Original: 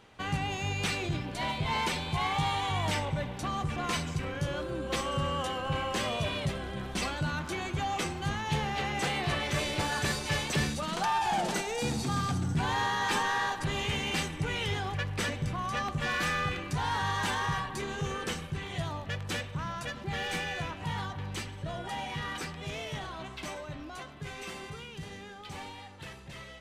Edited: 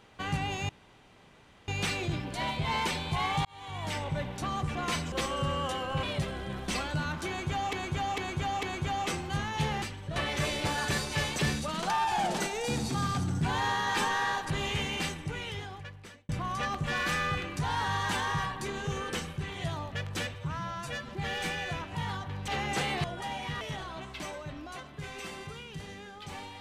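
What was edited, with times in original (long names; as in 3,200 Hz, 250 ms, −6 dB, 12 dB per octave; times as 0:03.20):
0:00.69: splice in room tone 0.99 s
0:02.46–0:03.21: fade in
0:04.13–0:04.87: remove
0:05.78–0:06.30: remove
0:07.55–0:08.00: repeat, 4 plays
0:08.74–0:09.30: swap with 0:21.37–0:21.71
0:13.89–0:15.43: fade out
0:19.48–0:19.98: time-stretch 1.5×
0:22.28–0:22.84: remove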